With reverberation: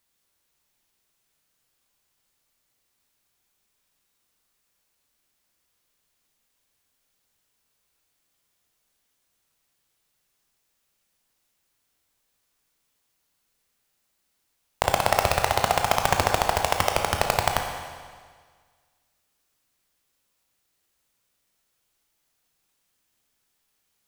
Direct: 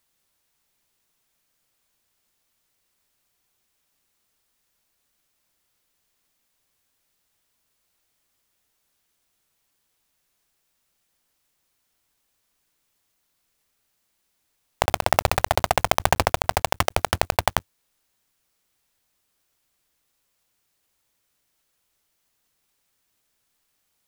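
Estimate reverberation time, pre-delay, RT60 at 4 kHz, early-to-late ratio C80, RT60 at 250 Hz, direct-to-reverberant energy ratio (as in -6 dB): 1.7 s, 20 ms, 1.6 s, 6.5 dB, 1.7 s, 3.0 dB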